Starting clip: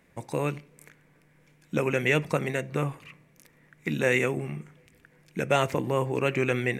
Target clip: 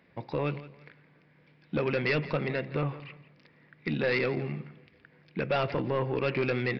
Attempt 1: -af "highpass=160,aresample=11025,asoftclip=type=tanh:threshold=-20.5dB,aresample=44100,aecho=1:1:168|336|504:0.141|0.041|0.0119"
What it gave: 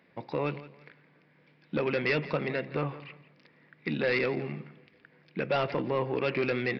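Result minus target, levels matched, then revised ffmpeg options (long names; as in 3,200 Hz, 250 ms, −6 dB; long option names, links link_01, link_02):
125 Hz band −3.5 dB
-af "highpass=78,aresample=11025,asoftclip=type=tanh:threshold=-20.5dB,aresample=44100,aecho=1:1:168|336|504:0.141|0.041|0.0119"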